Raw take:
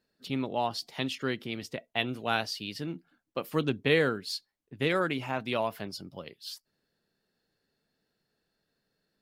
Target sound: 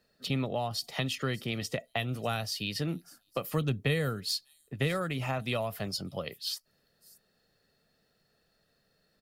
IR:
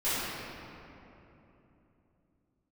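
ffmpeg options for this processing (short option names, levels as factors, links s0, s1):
-filter_complex "[0:a]aecho=1:1:1.6:0.39,acrossover=split=160|7300[s0][s1][s2];[s1]acompressor=threshold=0.0141:ratio=6[s3];[s2]aecho=1:1:594:0.282[s4];[s0][s3][s4]amix=inputs=3:normalize=0,volume=2.11"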